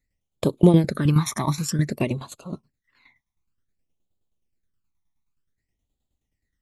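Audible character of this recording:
tremolo saw down 9.5 Hz, depth 70%
phaser sweep stages 12, 0.54 Hz, lowest notch 480–1,900 Hz

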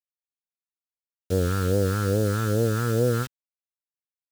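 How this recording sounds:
a quantiser's noise floor 6 bits, dither none
phaser sweep stages 2, 2.4 Hz, lowest notch 520–1,200 Hz

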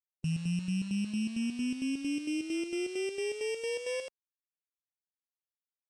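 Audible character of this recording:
a buzz of ramps at a fixed pitch in blocks of 16 samples
chopped level 4.4 Hz, depth 60%, duty 60%
a quantiser's noise floor 8 bits, dither none
Ogg Vorbis

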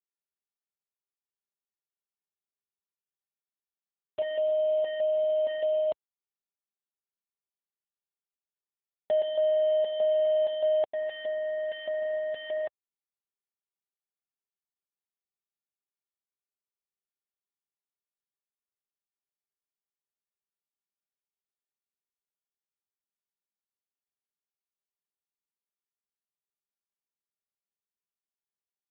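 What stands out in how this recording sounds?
chopped level 1.6 Hz, depth 65%, duty 75%
a quantiser's noise floor 6 bits, dither none
AMR narrowband

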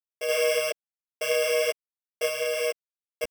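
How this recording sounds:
a buzz of ramps at a fixed pitch in blocks of 16 samples
sample-and-hold tremolo 3.5 Hz
a quantiser's noise floor 10 bits, dither none
a shimmering, thickened sound

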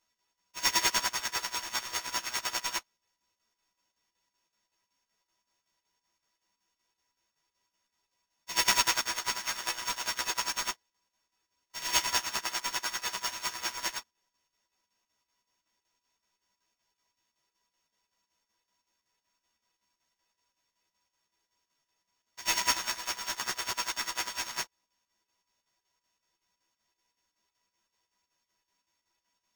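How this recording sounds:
a buzz of ramps at a fixed pitch in blocks of 8 samples
chopped level 5.3 Hz, depth 60%, duty 70%
aliases and images of a low sample rate 12,000 Hz, jitter 0%
a shimmering, thickened sound

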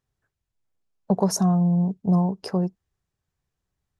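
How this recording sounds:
background noise floor −84 dBFS
spectral slope −7.0 dB per octave

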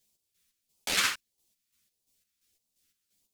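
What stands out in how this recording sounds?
phaser sweep stages 2, 1.6 Hz, lowest notch 670–1,500 Hz
chopped level 2.9 Hz, depth 60%, duty 45%
a shimmering, thickened sound

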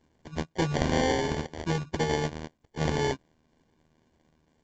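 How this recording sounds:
a buzz of ramps at a fixed pitch in blocks of 32 samples
phaser sweep stages 2, 2 Hz, lowest notch 680–2,300 Hz
aliases and images of a low sample rate 1,300 Hz, jitter 0%
mu-law

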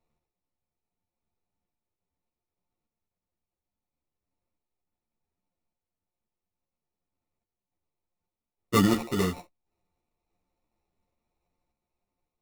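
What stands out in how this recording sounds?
a buzz of ramps at a fixed pitch in blocks of 8 samples
sample-and-hold tremolo
aliases and images of a low sample rate 1,600 Hz, jitter 0%
a shimmering, thickened sound

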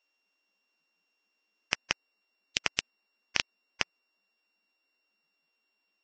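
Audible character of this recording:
a buzz of ramps at a fixed pitch in blocks of 16 samples
Ogg Vorbis

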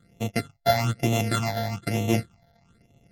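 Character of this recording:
a buzz of ramps at a fixed pitch in blocks of 64 samples
phaser sweep stages 8, 1.1 Hz, lowest notch 340–1,500 Hz
MP3

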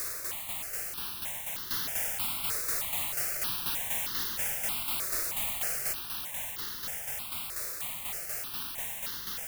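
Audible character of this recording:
a quantiser's noise floor 6 bits, dither triangular
tremolo saw down 4.1 Hz, depth 55%
notches that jump at a steady rate 3.2 Hz 840–2,400 Hz

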